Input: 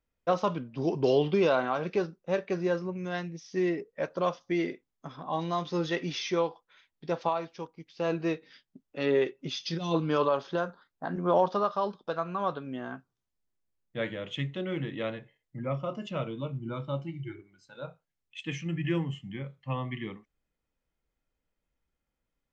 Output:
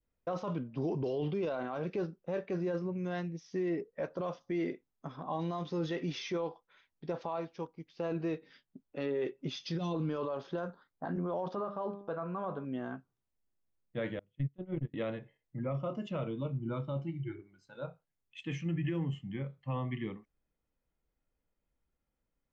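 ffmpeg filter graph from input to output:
ffmpeg -i in.wav -filter_complex "[0:a]asettb=1/sr,asplit=3[link_01][link_02][link_03];[link_01]atrim=end=11.554[link_04];[link_02]atrim=start=11.55:end=12.65,asetpts=PTS-STARTPTS,afade=type=in:duration=0.004:curve=qsin,afade=type=out:start_time=1.096:duration=0.004:curve=qsin,lowpass=2200,bandreject=frequency=100.2:width_type=h:width=4,bandreject=frequency=200.4:width_type=h:width=4,bandreject=frequency=300.6:width_type=h:width=4,bandreject=frequency=400.8:width_type=h:width=4,bandreject=frequency=501:width_type=h:width=4,bandreject=frequency=601.2:width_type=h:width=4,bandreject=frequency=701.4:width_type=h:width=4,bandreject=frequency=801.6:width_type=h:width=4,bandreject=frequency=901.8:width_type=h:width=4,bandreject=frequency=1002:width_type=h:width=4,bandreject=frequency=1102.2:width_type=h:width=4,bandreject=frequency=1202.4:width_type=h:width=4,bandreject=frequency=1302.6:width_type=h:width=4,bandreject=frequency=1402.8:width_type=h:width=4,bandreject=frequency=1503:width_type=h:width=4,bandreject=frequency=1603.2:width_type=h:width=4,bandreject=frequency=1703.4:width_type=h:width=4,bandreject=frequency=1803.6:width_type=h:width=4,bandreject=frequency=1903.8:width_type=h:width=4,bandreject=frequency=2004:width_type=h:width=4,bandreject=frequency=2104.2:width_type=h:width=4,bandreject=frequency=2204.4:width_type=h:width=4,bandreject=frequency=2304.6:width_type=h:width=4,bandreject=frequency=2404.8:width_type=h:width=4,bandreject=frequency=2505:width_type=h:width=4,bandreject=frequency=2605.2:width_type=h:width=4[link_05];[link_03]atrim=start=12.646[link_06];[link_04][link_05]acrossfade=duration=0.004:curve1=hsin:curve2=qsin[link_07];[link_07][link_06]acrossfade=duration=0.004:curve1=qsin:curve2=hsin,asettb=1/sr,asplit=3[link_08][link_09][link_10];[link_08]atrim=end=14.194[link_11];[link_09]atrim=start=14.19:end=14.94,asetpts=PTS-STARTPTS,afade=type=in:duration=0.004:curve=qsin,afade=type=out:start_time=0.746:duration=0.004:curve=qsin,agate=range=-36dB:threshold=-31dB:ratio=16:release=100:detection=peak,aemphasis=mode=reproduction:type=riaa[link_12];[link_10]atrim=start=14.936[link_13];[link_11][link_12]acrossfade=duration=0.004:curve1=hsin:curve2=qsin[link_14];[link_14][link_13]acrossfade=duration=0.004:curve1=qsin:curve2=hsin,highshelf=frequency=2000:gain=-9,alimiter=level_in=2.5dB:limit=-24dB:level=0:latency=1:release=16,volume=-2.5dB,adynamicequalizer=threshold=0.00447:dfrequency=1100:dqfactor=0.95:tfrequency=1100:tqfactor=0.95:attack=5:release=100:ratio=0.375:range=2:mode=cutabove:tftype=bell" out.wav

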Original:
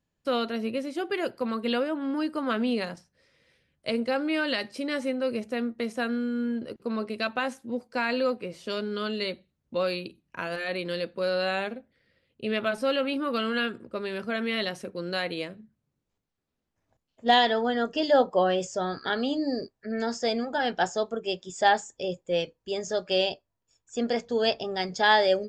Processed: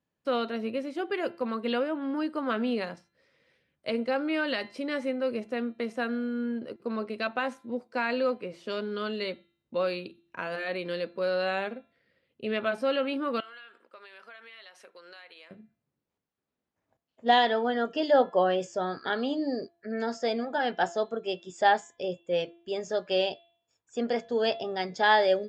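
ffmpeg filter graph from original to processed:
ffmpeg -i in.wav -filter_complex "[0:a]asettb=1/sr,asplit=3[link_01][link_02][link_03];[link_01]atrim=end=13.404[link_04];[link_02]atrim=start=13.4:end=15.51,asetpts=PTS-STARTPTS,afade=type=in:duration=0.004:curve=qsin,afade=type=out:start_time=2.106:duration=0.004:curve=qsin,highpass=980,acompressor=threshold=-44dB:ratio=5:attack=3.2:release=140:knee=1:detection=peak[link_05];[link_03]atrim=start=15.506[link_06];[link_04][link_05]acrossfade=duration=0.004:curve1=hsin:curve2=qsin[link_07];[link_07][link_06]acrossfade=duration=0.004:curve1=qsin:curve2=hsin,highpass=frequency=210:poles=1,highshelf=frequency=4700:gain=-12,bandreject=frequency=340.8:width_type=h:width=4,bandreject=frequency=681.6:width_type=h:width=4,bandreject=frequency=1022.4:width_type=h:width=4,bandreject=frequency=1363.2:width_type=h:width=4,bandreject=frequency=1704:width_type=h:width=4,bandreject=frequency=2044.8:width_type=h:width=4,bandreject=frequency=2385.6:width_type=h:width=4,bandreject=frequency=2726.4:width_type=h:width=4,bandreject=frequency=3067.2:width_type=h:width=4,bandreject=frequency=3408:width_type=h:width=4,bandreject=frequency=3748.8:width_type=h:width=4,bandreject=frequency=4089.6:width_type=h:width=4" out.wav

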